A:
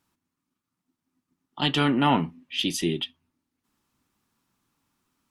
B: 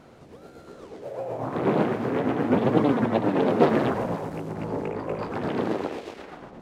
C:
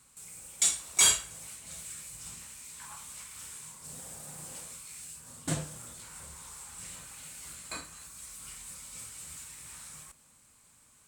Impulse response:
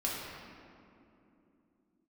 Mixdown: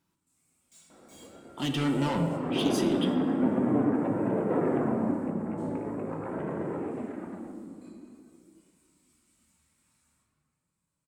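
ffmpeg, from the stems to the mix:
-filter_complex "[0:a]asoftclip=type=tanh:threshold=0.0631,volume=0.668,asplit=3[s0][s1][s2];[s1]volume=0.447[s3];[1:a]lowpass=f=2100:w=0.5412,lowpass=f=2100:w=1.3066,adelay=900,volume=0.631,asplit=2[s4][s5];[s5]volume=0.376[s6];[2:a]asoftclip=type=tanh:threshold=0.0422,flanger=delay=22.5:depth=8:speed=0.23,adelay=100,volume=0.531,asplit=2[s7][s8];[s8]volume=0.178[s9];[s2]apad=whole_len=492708[s10];[s7][s10]sidechaingate=range=0.0224:threshold=0.00562:ratio=16:detection=peak[s11];[s4][s11]amix=inputs=2:normalize=0,highpass=310,acompressor=threshold=0.0112:ratio=2,volume=1[s12];[3:a]atrim=start_sample=2205[s13];[s3][s6][s9]amix=inputs=3:normalize=0[s14];[s14][s13]afir=irnorm=-1:irlink=0[s15];[s0][s12][s15]amix=inputs=3:normalize=0,equalizer=f=180:t=o:w=1.8:g=8,flanger=delay=2:depth=1.7:regen=-60:speed=0.46:shape=sinusoidal,bandreject=f=60:t=h:w=6,bandreject=f=120:t=h:w=6"

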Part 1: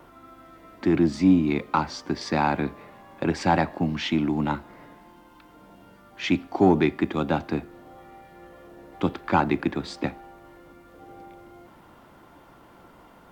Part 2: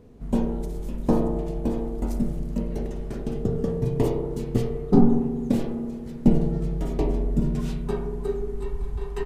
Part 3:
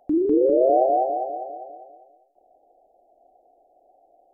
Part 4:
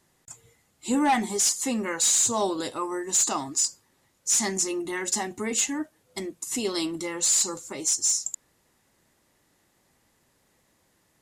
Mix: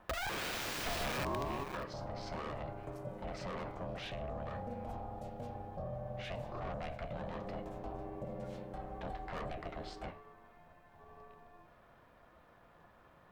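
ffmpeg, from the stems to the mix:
-filter_complex "[0:a]flanger=delay=8.5:depth=8.2:regen=-69:speed=0.64:shape=triangular,asoftclip=type=tanh:threshold=0.0376,volume=0.75[s0];[1:a]acompressor=threshold=0.0708:ratio=3,adelay=850,volume=0.335[s1];[2:a]equalizer=f=310:w=5:g=-6.5,aeval=exprs='(mod(14.1*val(0)+1,2)-1)/14.1':c=same,volume=1.12[s2];[s0][s1]amix=inputs=2:normalize=0,highpass=f=130:p=1,alimiter=level_in=2.37:limit=0.0631:level=0:latency=1:release=19,volume=0.422,volume=1[s3];[s2]aeval=exprs='val(0)*gte(abs(val(0)),0.0158)':c=same,acompressor=threshold=0.0224:ratio=5,volume=1[s4];[s3][s4]amix=inputs=2:normalize=0,equalizer=f=11000:w=0.33:g=-7.5,bandreject=f=980:w=21,aeval=exprs='val(0)*sin(2*PI*360*n/s)':c=same"

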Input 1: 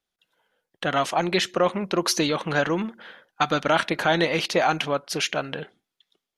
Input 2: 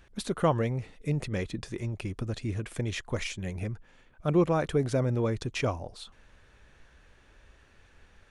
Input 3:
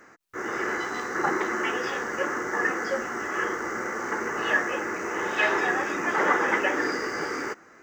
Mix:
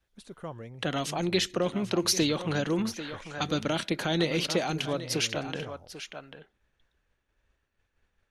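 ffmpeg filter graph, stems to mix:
-filter_complex "[0:a]volume=0.891,asplit=2[s0][s1];[s1]volume=0.188[s2];[1:a]agate=range=0.0224:threshold=0.00224:ratio=3:detection=peak,volume=0.188[s3];[s2]aecho=0:1:792:1[s4];[s0][s3][s4]amix=inputs=3:normalize=0,acrossover=split=440|3000[s5][s6][s7];[s6]acompressor=threshold=0.0178:ratio=6[s8];[s5][s8][s7]amix=inputs=3:normalize=0"

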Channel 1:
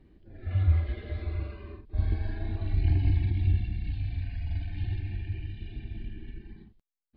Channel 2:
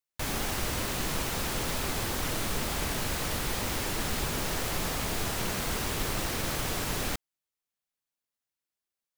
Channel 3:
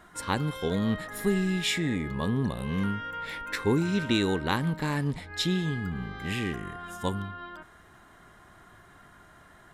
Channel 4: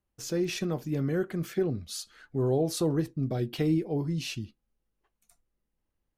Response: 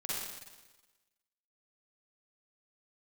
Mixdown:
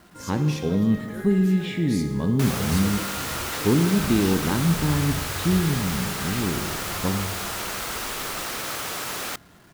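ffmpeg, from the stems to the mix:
-filter_complex "[0:a]adelay=2050,volume=0.376[s0];[1:a]highpass=f=510:p=1,equalizer=f=1300:t=o:w=0.34:g=4.5,adelay=2200,volume=1.41[s1];[2:a]acrossover=split=3800[s2][s3];[s3]acompressor=threshold=0.00562:ratio=4:attack=1:release=60[s4];[s2][s4]amix=inputs=2:normalize=0,equalizer=f=180:w=0.37:g=12.5,volume=0.447,asplit=2[s5][s6];[s6]volume=0.316[s7];[3:a]tiltshelf=f=970:g=-6,volume=0.376,asplit=2[s8][s9];[s9]volume=0.335[s10];[4:a]atrim=start_sample=2205[s11];[s7][s10]amix=inputs=2:normalize=0[s12];[s12][s11]afir=irnorm=-1:irlink=0[s13];[s0][s1][s5][s8][s13]amix=inputs=5:normalize=0,acrusher=bits=8:mix=0:aa=0.000001"

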